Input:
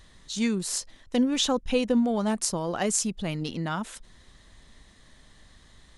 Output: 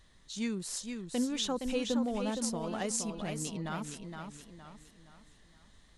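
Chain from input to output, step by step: modulated delay 467 ms, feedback 40%, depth 87 cents, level -6 dB; trim -8.5 dB

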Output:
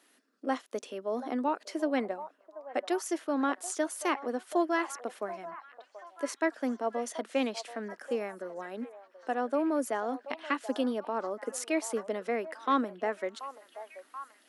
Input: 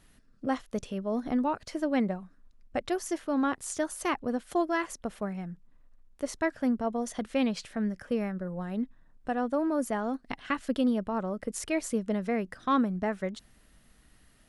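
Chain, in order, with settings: steep high-pass 270 Hz 36 dB/octave; on a send: repeats whose band climbs or falls 732 ms, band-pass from 760 Hz, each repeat 0.7 oct, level -10.5 dB

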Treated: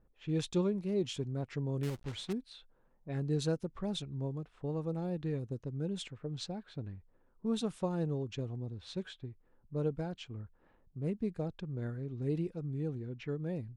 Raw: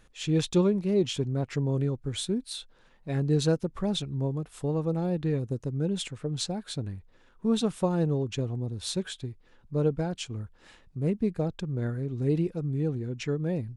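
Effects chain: 1.83–2.33 s: companded quantiser 4-bit; level-controlled noise filter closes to 740 Hz, open at -24 dBFS; trim -8 dB

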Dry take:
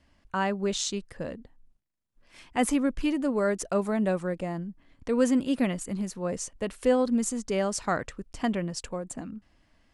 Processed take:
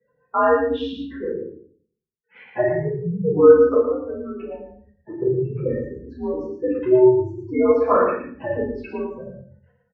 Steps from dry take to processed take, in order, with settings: spectral gate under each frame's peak -15 dB strong; 3.75–5.22 s: compression 6:1, threshold -36 dBFS, peak gain reduction 15 dB; on a send: delay 114 ms -5.5 dB; on the sum: simulated room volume 60 m³, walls mixed, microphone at 2.6 m; mistuned SSB -130 Hz 390–2900 Hz; trim -1 dB

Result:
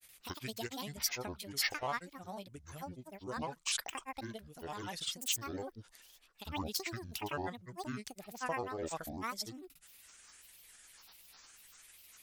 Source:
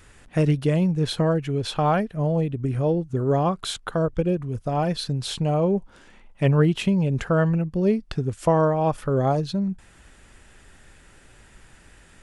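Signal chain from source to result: pre-emphasis filter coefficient 0.97; wow and flutter 20 cents; granulator 100 ms, pitch spread up and down by 12 st; trim +4 dB

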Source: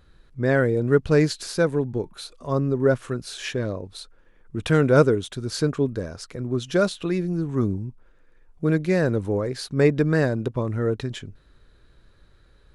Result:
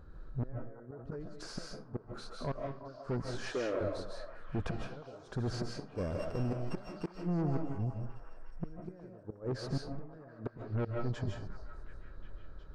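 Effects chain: 5.95–7.18 s: sorted samples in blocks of 16 samples; high-order bell 2.7 kHz -10.5 dB 1.3 oct; in parallel at -3 dB: compression 16:1, threshold -30 dBFS, peak gain reduction 20.5 dB; 3.38–3.81 s: on the sum: high-pass 280 Hz 24 dB/octave; inverted gate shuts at -14 dBFS, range -33 dB; saturation -28 dBFS, distortion -7 dB; tape spacing loss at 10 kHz 25 dB; repeats whose band climbs or falls 362 ms, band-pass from 840 Hz, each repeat 0.7 oct, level -8 dB; reverberation RT60 0.35 s, pre-delay 115 ms, DRR 1 dB; 0.76–1.43 s: decay stretcher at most 24 dB/s; trim -1 dB

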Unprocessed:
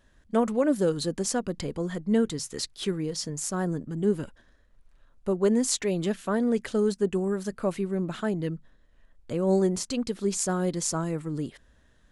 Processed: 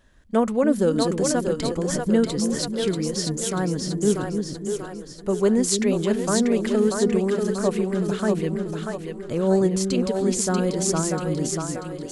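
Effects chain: two-band feedback delay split 360 Hz, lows 296 ms, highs 638 ms, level -4 dB; trim +3.5 dB

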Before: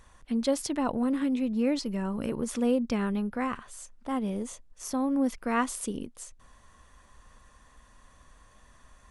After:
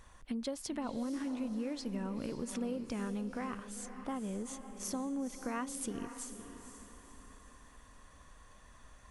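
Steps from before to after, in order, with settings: compression, threshold -34 dBFS, peak gain reduction 12.5 dB; echo that smears into a reverb 506 ms, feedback 42%, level -9.5 dB; trim -1.5 dB

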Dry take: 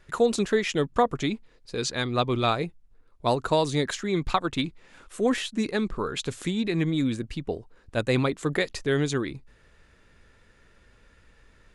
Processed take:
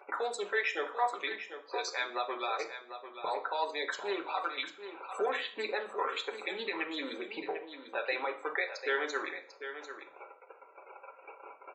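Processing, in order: local Wiener filter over 25 samples; gate -54 dBFS, range -37 dB; high-pass 630 Hz 24 dB/octave; peaking EQ 2.9 kHz -4 dB 1.6 oct; upward compressor, threshold -30 dBFS; peak limiter -25 dBFS, peak gain reduction 13 dB; loudest bins only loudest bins 64; delay 745 ms -10.5 dB; reverberation RT60 0.50 s, pre-delay 3 ms, DRR 1 dB; trim -1 dB

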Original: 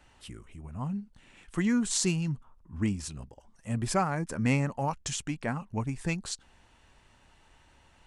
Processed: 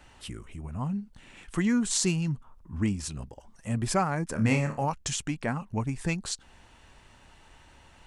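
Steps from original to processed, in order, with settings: in parallel at -1 dB: compression, threshold -40 dBFS, peak gain reduction 18 dB; 4.33–4.84 s: on the sum: flutter echo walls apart 4.6 m, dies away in 0.28 s

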